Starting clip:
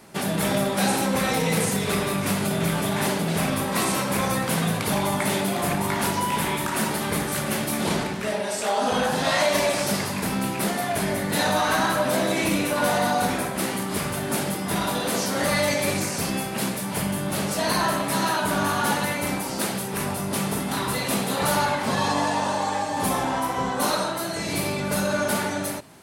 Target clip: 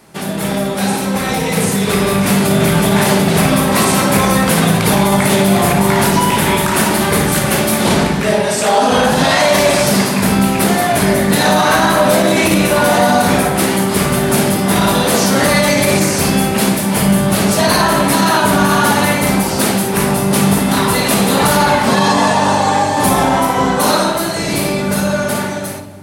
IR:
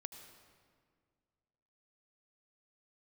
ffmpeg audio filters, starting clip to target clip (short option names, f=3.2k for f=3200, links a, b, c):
-filter_complex "[0:a]dynaudnorm=f=360:g=11:m=11.5dB,asplit=2[a][b];[1:a]atrim=start_sample=2205,lowshelf=f=410:g=10,adelay=56[c];[b][c]afir=irnorm=-1:irlink=0,volume=-5dB[d];[a][d]amix=inputs=2:normalize=0,alimiter=level_in=4dB:limit=-1dB:release=50:level=0:latency=1,volume=-1dB"